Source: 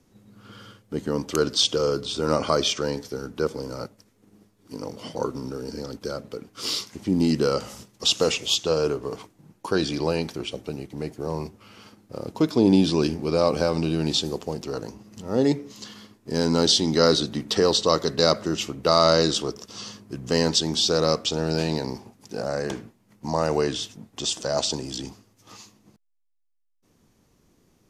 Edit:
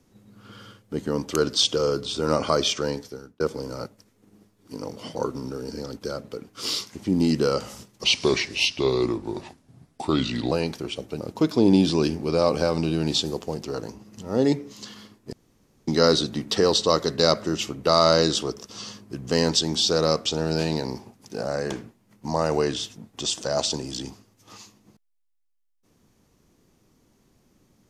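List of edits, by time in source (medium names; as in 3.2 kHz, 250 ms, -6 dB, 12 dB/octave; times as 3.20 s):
2.90–3.40 s: fade out
8.04–10.07 s: speed 82%
10.76–12.20 s: delete
16.32–16.87 s: room tone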